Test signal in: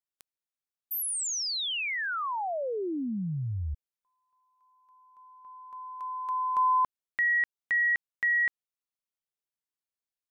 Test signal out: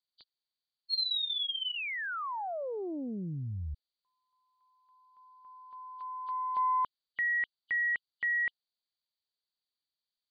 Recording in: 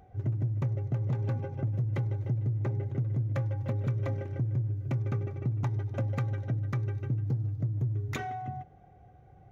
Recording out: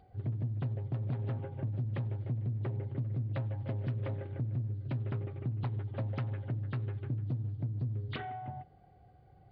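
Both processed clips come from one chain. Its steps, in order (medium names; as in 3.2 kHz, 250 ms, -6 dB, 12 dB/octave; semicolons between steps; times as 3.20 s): knee-point frequency compression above 2.9 kHz 4:1; loudspeaker Doppler distortion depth 0.45 ms; trim -4.5 dB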